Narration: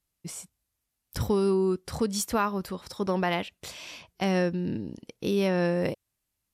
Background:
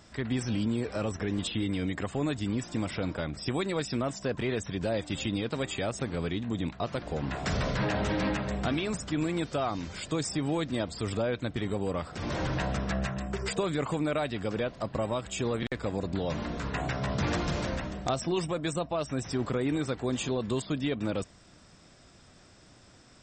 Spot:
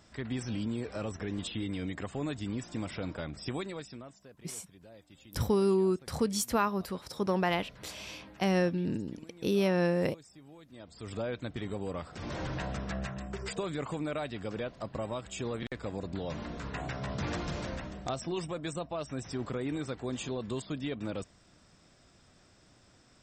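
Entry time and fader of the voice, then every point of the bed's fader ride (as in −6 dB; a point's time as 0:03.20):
4.20 s, −2.0 dB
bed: 0:03.55 −5 dB
0:04.31 −23.5 dB
0:10.64 −23.5 dB
0:11.20 −5.5 dB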